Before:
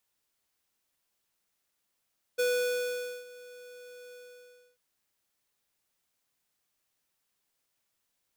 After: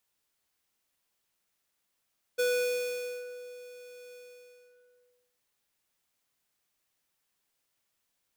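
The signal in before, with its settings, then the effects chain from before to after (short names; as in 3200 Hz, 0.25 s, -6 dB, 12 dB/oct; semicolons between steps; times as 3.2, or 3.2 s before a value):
ADSR square 493 Hz, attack 17 ms, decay 0.846 s, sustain -22 dB, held 1.75 s, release 0.645 s -26.5 dBFS
delay with a stepping band-pass 0.129 s, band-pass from 2500 Hz, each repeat -0.7 oct, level -6.5 dB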